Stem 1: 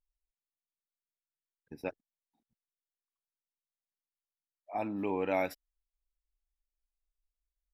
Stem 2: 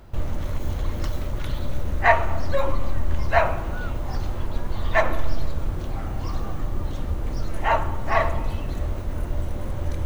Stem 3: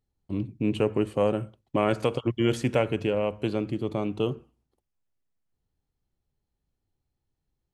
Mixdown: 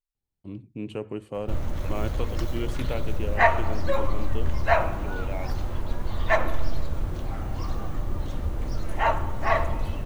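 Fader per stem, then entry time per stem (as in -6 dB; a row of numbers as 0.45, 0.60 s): -6.5, -2.0, -8.5 dB; 0.00, 1.35, 0.15 s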